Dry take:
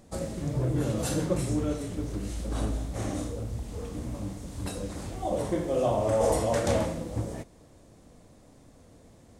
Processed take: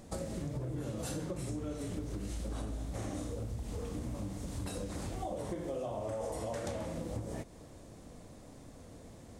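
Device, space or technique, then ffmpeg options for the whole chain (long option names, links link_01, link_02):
serial compression, peaks first: -af "acompressor=threshold=-33dB:ratio=6,acompressor=threshold=-41dB:ratio=2,volume=2.5dB"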